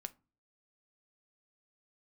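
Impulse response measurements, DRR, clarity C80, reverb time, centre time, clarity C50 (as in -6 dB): 11.0 dB, 29.0 dB, 0.35 s, 2 ms, 22.0 dB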